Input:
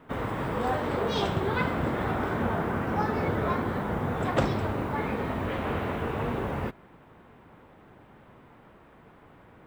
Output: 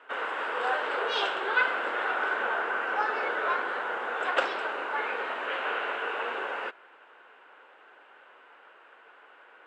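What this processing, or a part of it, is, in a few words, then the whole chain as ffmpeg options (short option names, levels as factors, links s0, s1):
phone speaker on a table: -af "highpass=f=460:w=0.5412,highpass=f=460:w=1.3066,equalizer=f=650:t=q:w=4:g=-3,equalizer=f=1500:t=q:w=4:g=10,equalizer=f=2800:t=q:w=4:g=9,equalizer=f=5800:t=q:w=4:g=-5,lowpass=f=7500:w=0.5412,lowpass=f=7500:w=1.3066"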